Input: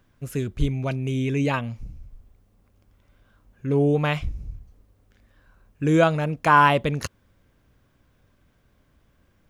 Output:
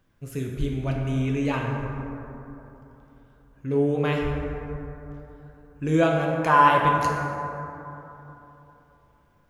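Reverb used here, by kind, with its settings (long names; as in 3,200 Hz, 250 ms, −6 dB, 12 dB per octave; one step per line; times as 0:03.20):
dense smooth reverb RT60 3.3 s, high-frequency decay 0.35×, DRR −1 dB
level −5 dB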